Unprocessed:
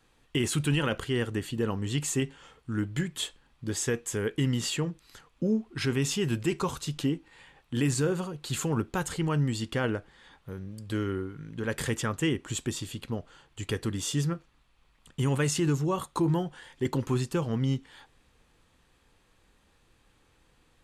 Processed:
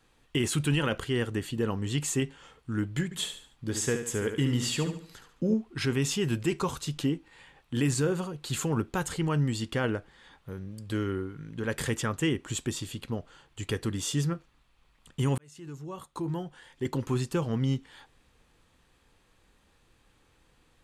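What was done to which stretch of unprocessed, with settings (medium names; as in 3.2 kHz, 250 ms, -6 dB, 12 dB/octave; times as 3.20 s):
3.04–5.54 s: feedback delay 72 ms, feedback 37%, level -8 dB
15.38–17.35 s: fade in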